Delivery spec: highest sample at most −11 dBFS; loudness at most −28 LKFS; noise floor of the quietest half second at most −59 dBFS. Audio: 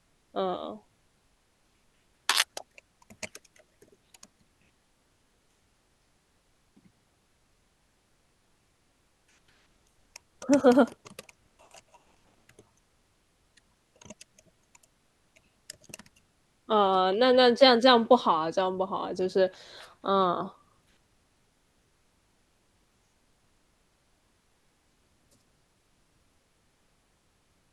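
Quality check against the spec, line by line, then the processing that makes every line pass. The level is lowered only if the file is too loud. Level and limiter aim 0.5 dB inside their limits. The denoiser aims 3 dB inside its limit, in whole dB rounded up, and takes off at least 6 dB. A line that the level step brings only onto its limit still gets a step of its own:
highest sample −6.0 dBFS: out of spec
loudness −24.5 LKFS: out of spec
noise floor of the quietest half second −69 dBFS: in spec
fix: level −4 dB
brickwall limiter −11.5 dBFS

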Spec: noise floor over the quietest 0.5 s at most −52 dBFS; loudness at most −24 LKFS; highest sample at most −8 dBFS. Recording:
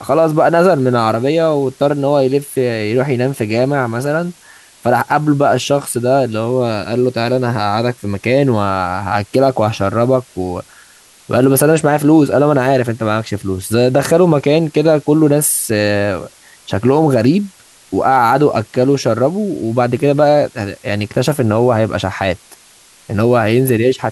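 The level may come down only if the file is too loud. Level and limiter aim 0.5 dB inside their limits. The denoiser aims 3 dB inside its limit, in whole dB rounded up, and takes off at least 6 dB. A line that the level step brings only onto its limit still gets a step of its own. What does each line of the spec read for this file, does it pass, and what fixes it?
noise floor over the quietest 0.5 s −46 dBFS: out of spec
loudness −14.5 LKFS: out of spec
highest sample −1.5 dBFS: out of spec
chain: level −10 dB

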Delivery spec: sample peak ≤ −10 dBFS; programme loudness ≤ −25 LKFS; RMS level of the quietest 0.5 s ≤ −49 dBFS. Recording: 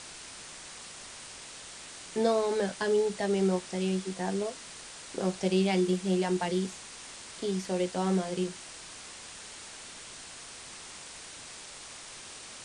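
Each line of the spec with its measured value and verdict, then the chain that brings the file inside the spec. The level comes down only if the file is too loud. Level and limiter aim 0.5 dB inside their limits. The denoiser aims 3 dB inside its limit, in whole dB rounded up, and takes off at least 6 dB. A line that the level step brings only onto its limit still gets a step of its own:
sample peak −15.0 dBFS: in spec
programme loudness −30.0 LKFS: in spec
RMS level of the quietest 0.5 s −46 dBFS: out of spec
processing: broadband denoise 6 dB, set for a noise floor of −46 dBFS

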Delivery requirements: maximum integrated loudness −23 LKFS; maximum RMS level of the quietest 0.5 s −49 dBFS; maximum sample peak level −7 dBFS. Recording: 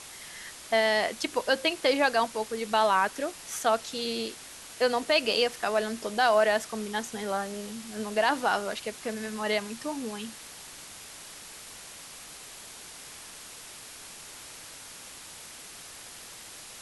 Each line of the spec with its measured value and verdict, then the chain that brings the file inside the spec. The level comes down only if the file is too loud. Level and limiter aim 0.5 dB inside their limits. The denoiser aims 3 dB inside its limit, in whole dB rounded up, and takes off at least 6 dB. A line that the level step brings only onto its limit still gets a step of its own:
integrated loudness −28.0 LKFS: in spec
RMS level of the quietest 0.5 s −46 dBFS: out of spec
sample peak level −10.0 dBFS: in spec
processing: broadband denoise 6 dB, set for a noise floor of −46 dBFS

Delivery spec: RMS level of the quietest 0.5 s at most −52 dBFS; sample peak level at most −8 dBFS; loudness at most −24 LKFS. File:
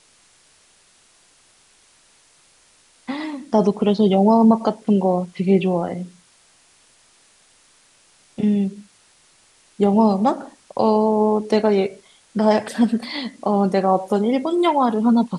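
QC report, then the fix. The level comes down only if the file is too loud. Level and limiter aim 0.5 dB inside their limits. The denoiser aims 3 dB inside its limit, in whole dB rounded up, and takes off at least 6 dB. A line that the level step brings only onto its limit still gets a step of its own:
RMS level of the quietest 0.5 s −56 dBFS: in spec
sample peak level −4.5 dBFS: out of spec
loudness −19.0 LKFS: out of spec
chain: level −5.5 dB

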